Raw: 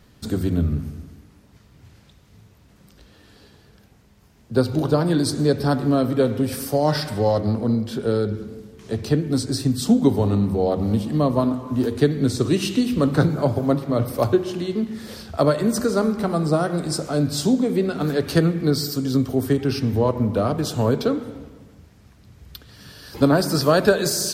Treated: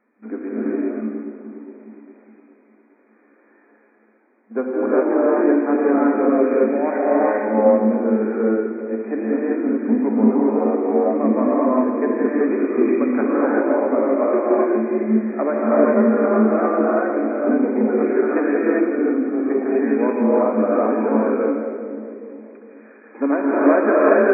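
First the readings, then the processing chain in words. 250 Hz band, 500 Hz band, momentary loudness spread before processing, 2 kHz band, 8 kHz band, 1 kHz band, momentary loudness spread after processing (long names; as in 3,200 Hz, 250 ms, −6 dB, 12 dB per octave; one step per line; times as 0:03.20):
+3.5 dB, +5.0 dB, 7 LU, +4.0 dB, below −40 dB, +4.5 dB, 10 LU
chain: echo with a time of its own for lows and highs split 520 Hz, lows 411 ms, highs 167 ms, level −10 dB
leveller curve on the samples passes 1
brick-wall band-pass 210–2,500 Hz
reverb whose tail is shaped and stops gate 430 ms rising, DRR −6.5 dB
level −6.5 dB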